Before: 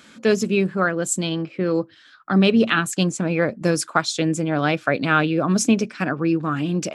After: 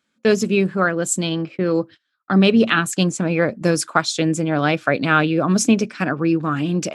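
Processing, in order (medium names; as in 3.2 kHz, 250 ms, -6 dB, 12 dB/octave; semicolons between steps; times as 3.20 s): gate -37 dBFS, range -26 dB; trim +2 dB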